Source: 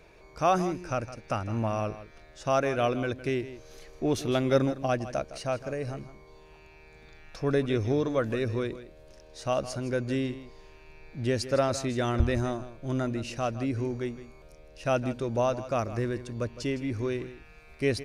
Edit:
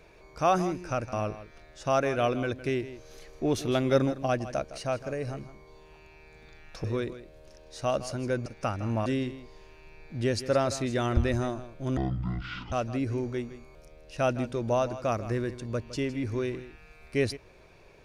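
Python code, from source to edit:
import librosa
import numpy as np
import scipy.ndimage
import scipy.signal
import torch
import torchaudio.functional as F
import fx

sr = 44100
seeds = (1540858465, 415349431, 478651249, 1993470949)

y = fx.edit(x, sr, fx.move(start_s=1.13, length_s=0.6, to_s=10.09),
    fx.cut(start_s=7.44, length_s=1.03),
    fx.speed_span(start_s=13.0, length_s=0.39, speed=0.52), tone=tone)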